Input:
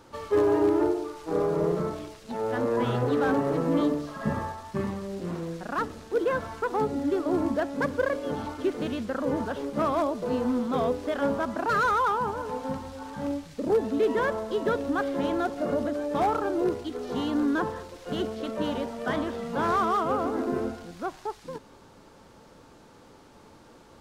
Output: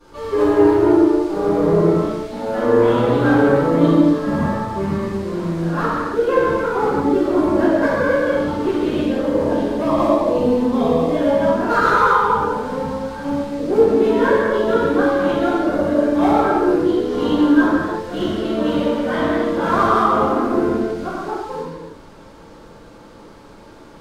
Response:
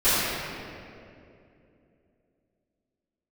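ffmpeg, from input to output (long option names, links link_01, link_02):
-filter_complex "[0:a]asettb=1/sr,asplit=3[link_01][link_02][link_03];[link_01]atrim=end=8.854[link_04];[link_02]atrim=start=8.85:end=11.45,asetpts=PTS-STARTPTS,afade=type=in:duration=0.004:curve=qsin,afade=type=out:start_time=2.596:duration=0.004:curve=qsin,equalizer=frequency=1400:width_type=o:width=0.33:gain=-13[link_05];[link_03]atrim=start=11.446[link_06];[link_04][link_05]acrossfade=duration=0.004:curve1=hsin:curve2=qsin[link_07];[link_07][link_06]acrossfade=duration=0.004:curve1=qsin:curve2=hsin[link_08];[1:a]atrim=start_sample=2205,afade=type=out:start_time=0.38:duration=0.01,atrim=end_sample=17199,asetrate=39690,aresample=44100[link_09];[link_08][link_09]afir=irnorm=-1:irlink=0,volume=-9.5dB"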